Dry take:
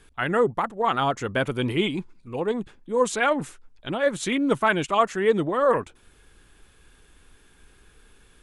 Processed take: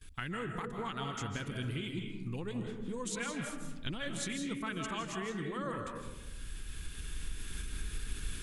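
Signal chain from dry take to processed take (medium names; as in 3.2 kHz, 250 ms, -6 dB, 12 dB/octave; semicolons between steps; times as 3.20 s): recorder AGC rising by 9.5 dB/s; gate with hold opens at -48 dBFS; amplifier tone stack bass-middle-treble 6-0-2; compression 6:1, threshold -54 dBFS, peak gain reduction 16 dB; algorithmic reverb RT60 1.1 s, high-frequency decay 0.4×, pre-delay 120 ms, DRR 2.5 dB; trim +16.5 dB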